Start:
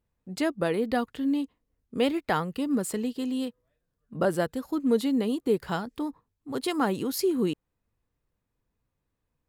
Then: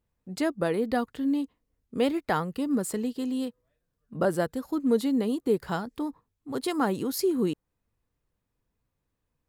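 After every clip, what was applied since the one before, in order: dynamic EQ 2800 Hz, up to -4 dB, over -51 dBFS, Q 1.6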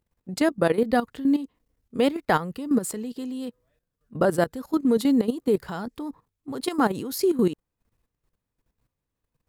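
level quantiser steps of 13 dB; gain +7.5 dB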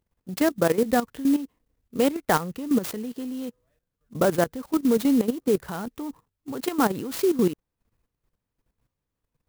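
clock jitter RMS 0.044 ms

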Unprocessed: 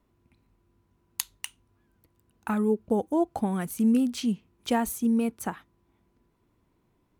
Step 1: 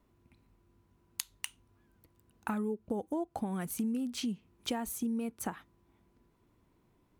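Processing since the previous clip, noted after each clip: compressor 6:1, threshold -32 dBFS, peak gain reduction 12.5 dB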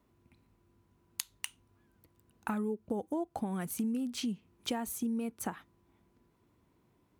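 HPF 56 Hz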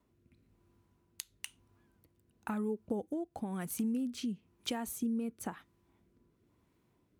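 rotary speaker horn 1 Hz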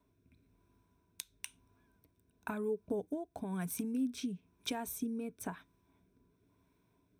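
ripple EQ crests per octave 1.6, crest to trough 9 dB; gain -1.5 dB

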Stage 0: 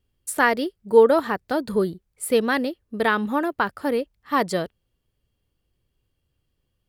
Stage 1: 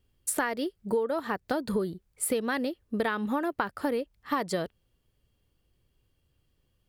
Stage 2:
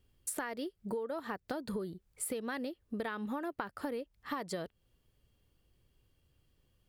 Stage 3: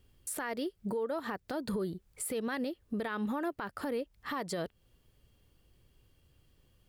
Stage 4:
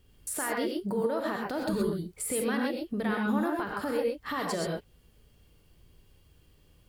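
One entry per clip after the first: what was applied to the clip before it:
compressor 12:1, threshold -27 dBFS, peak gain reduction 18.5 dB; gain +2 dB
compressor 2:1, threshold -42 dBFS, peak gain reduction 10.5 dB
limiter -32.5 dBFS, peak gain reduction 10 dB; gain +5.5 dB
non-linear reverb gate 0.15 s rising, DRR -0.5 dB; gain +2.5 dB

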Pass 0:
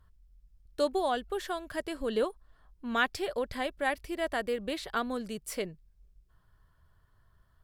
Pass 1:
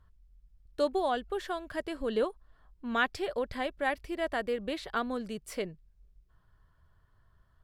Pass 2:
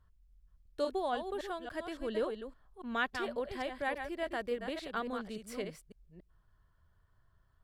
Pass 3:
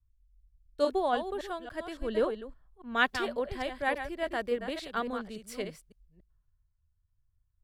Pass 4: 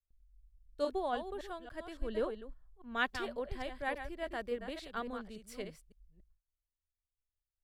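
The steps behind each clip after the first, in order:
high shelf 6200 Hz -9 dB
reverse delay 0.282 s, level -7 dB; gain -5 dB
three-band expander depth 70%; gain +4 dB
gate with hold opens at -60 dBFS; low shelf 62 Hz +10.5 dB; gain -7 dB

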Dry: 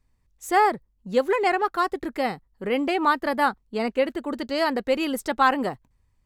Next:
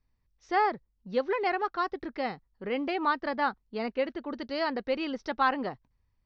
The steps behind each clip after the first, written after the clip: Chebyshev low-pass 5800 Hz, order 6; gain -6 dB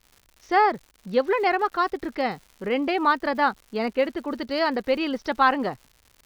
crackle 200/s -46 dBFS; gain +6.5 dB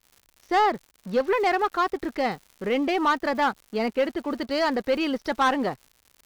sample leveller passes 2; gain -6.5 dB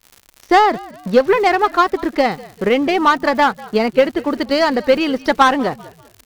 transient shaper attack +6 dB, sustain +1 dB; frequency-shifting echo 0.195 s, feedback 36%, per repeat -60 Hz, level -21 dB; gain +7 dB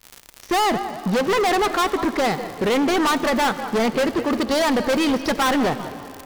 overloaded stage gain 21 dB; on a send at -13 dB: reverb RT60 3.4 s, pre-delay 50 ms; on the sum: gain +3.5 dB

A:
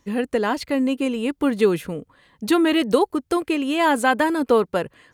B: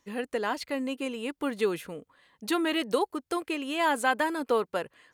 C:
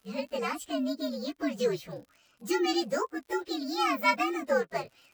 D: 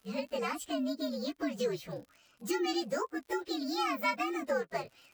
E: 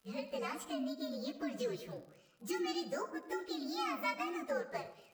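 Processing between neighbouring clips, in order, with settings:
low shelf 290 Hz -11.5 dB; gain -5.5 dB
inharmonic rescaling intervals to 120%; crackle 87/s -49 dBFS; gain +2 dB
compressor 2:1, threshold -32 dBFS, peak gain reduction 7.5 dB
reverb RT60 0.75 s, pre-delay 30 ms, DRR 11.5 dB; gain -5.5 dB

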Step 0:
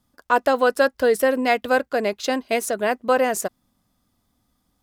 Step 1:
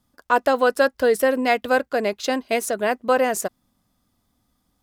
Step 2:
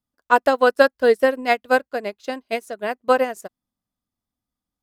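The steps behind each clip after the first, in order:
nothing audible
upward expander 2.5:1, over -29 dBFS; gain +5 dB

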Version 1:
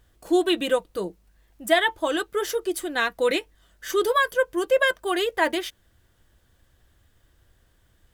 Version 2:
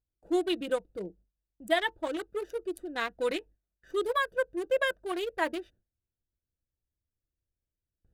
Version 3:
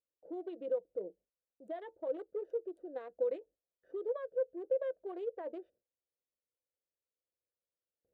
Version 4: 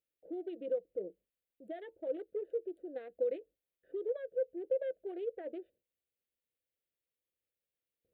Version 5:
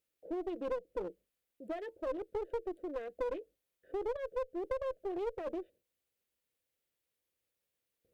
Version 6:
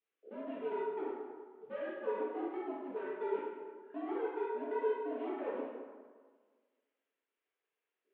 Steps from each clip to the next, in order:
Wiener smoothing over 41 samples; gate with hold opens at -48 dBFS; gain -6.5 dB
limiter -23.5 dBFS, peak gain reduction 10 dB; compressor 2.5:1, threshold -35 dBFS, peak gain reduction 6 dB; band-pass 520 Hz, Q 4.5; gain +5 dB
fixed phaser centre 2500 Hz, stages 4; gain +3 dB
compressor 6:1, threshold -35 dBFS, peak gain reduction 7.5 dB; one-sided clip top -44 dBFS; gain +5.5 dB
short-mantissa float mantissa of 4-bit; mistuned SSB -97 Hz 500–3200 Hz; plate-style reverb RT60 1.6 s, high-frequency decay 0.6×, pre-delay 0 ms, DRR -9 dB; gain -6 dB

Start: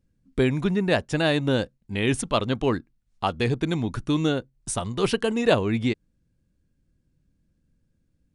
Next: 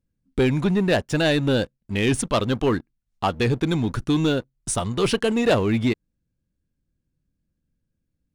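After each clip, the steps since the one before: sample leveller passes 2; gain -3.5 dB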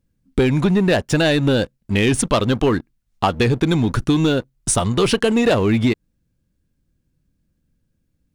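compressor, threshold -21 dBFS, peak gain reduction 6.5 dB; gain +8 dB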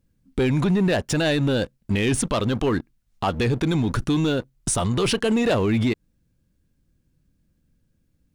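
limiter -16 dBFS, peak gain reduction 10 dB; gain +1.5 dB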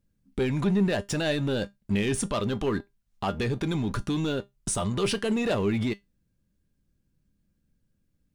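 resonator 200 Hz, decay 0.17 s, harmonics all, mix 60%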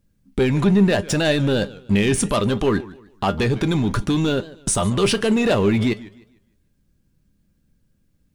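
warbling echo 0.151 s, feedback 32%, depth 177 cents, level -19 dB; gain +8 dB

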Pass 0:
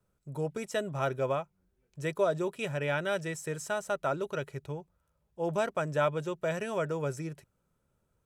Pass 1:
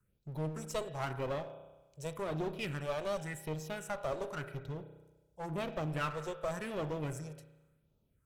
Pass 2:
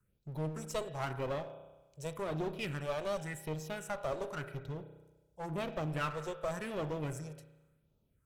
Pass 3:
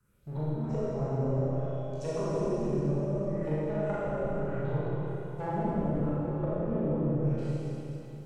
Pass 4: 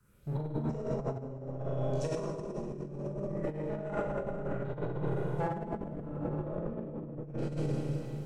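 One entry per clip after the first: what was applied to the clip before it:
phaser stages 4, 0.91 Hz, lowest notch 210–1700 Hz; spring tank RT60 1.1 s, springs 32 ms, chirp 25 ms, DRR 10 dB; one-sided clip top -42.5 dBFS
nothing audible
spectral trails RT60 0.50 s; treble ducked by the level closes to 320 Hz, closed at -33.5 dBFS; Schroeder reverb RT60 3.5 s, combs from 27 ms, DRR -9.5 dB; gain +2.5 dB
negative-ratio compressor -34 dBFS, ratio -0.5

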